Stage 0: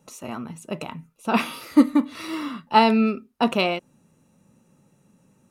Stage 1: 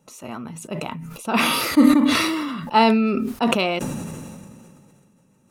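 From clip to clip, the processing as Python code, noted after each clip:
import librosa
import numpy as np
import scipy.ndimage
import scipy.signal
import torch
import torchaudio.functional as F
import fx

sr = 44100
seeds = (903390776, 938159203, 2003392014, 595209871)

y = fx.sustainer(x, sr, db_per_s=25.0)
y = y * librosa.db_to_amplitude(-1.0)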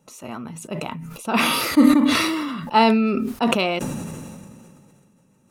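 y = x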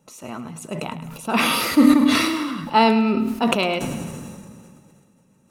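y = fx.echo_feedback(x, sr, ms=105, feedback_pct=53, wet_db=-12.5)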